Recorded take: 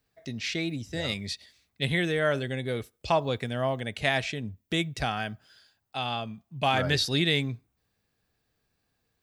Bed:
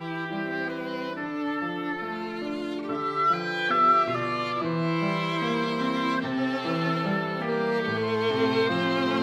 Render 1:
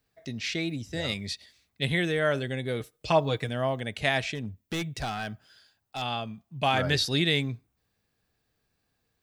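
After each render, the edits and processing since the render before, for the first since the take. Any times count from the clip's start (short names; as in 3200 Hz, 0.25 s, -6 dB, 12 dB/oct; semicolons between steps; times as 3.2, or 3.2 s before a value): 2.8–3.49 comb 6.5 ms, depth 61%; 4.35–6.02 hard clip -27.5 dBFS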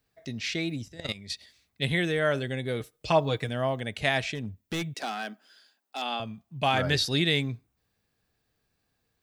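0.88–1.3 level quantiser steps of 15 dB; 4.94–6.2 steep high-pass 210 Hz 48 dB/oct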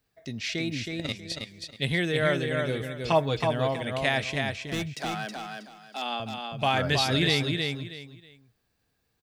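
feedback echo 0.32 s, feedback 25%, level -4.5 dB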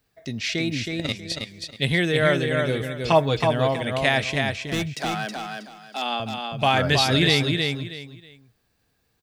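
gain +5 dB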